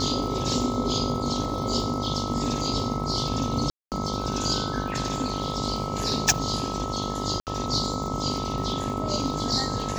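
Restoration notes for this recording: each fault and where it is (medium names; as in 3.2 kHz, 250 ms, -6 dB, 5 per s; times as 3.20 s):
buzz 50 Hz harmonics 22 -32 dBFS
crackle 130 per s -36 dBFS
whine 1.3 kHz -33 dBFS
3.70–3.92 s: dropout 218 ms
7.40–7.47 s: dropout 68 ms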